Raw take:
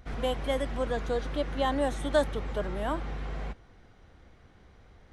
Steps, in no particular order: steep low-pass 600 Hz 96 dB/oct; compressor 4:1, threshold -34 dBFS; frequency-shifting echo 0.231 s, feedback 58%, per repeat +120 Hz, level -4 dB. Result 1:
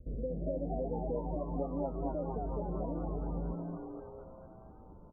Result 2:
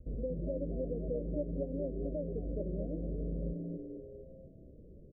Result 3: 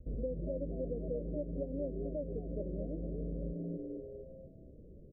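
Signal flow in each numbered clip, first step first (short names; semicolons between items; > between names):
compressor > steep low-pass > frequency-shifting echo; compressor > frequency-shifting echo > steep low-pass; frequency-shifting echo > compressor > steep low-pass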